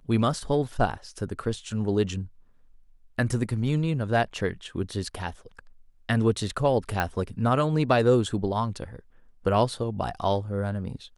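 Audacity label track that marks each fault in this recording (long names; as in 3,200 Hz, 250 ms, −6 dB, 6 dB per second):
7.000000	7.000000	click −11 dBFS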